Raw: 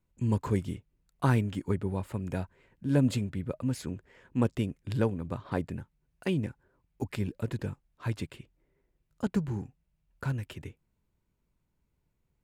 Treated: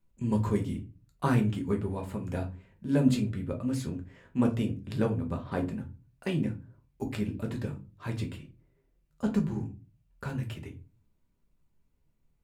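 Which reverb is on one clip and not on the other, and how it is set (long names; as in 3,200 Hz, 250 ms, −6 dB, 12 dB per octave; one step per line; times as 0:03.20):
rectangular room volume 130 cubic metres, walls furnished, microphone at 1.2 metres
level −2 dB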